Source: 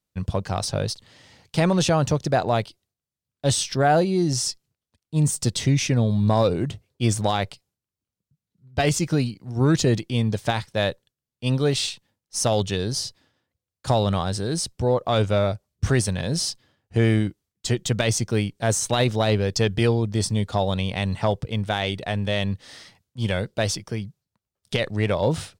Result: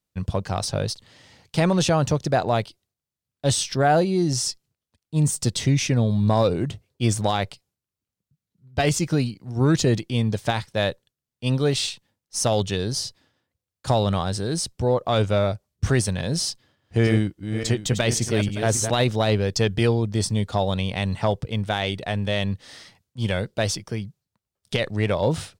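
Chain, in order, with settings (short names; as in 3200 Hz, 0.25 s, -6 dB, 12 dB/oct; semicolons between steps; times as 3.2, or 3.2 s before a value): 16.5–18.9 regenerating reverse delay 0.284 s, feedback 46%, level -7 dB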